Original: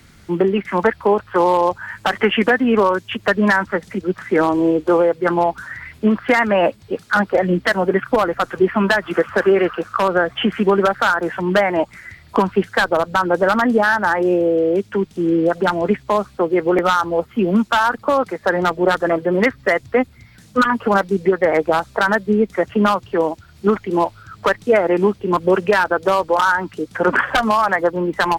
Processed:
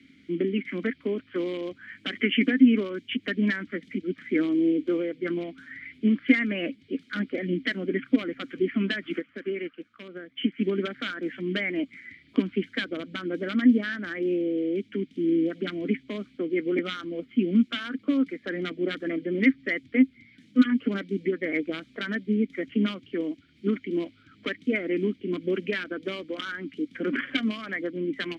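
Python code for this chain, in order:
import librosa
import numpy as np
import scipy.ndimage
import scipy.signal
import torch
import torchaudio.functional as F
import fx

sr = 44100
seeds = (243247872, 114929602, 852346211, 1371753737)

y = fx.vowel_filter(x, sr, vowel='i')
y = fx.upward_expand(y, sr, threshold_db=-44.0, expansion=1.5, at=(9.18, 10.6), fade=0.02)
y = y * 10.0 ** (5.0 / 20.0)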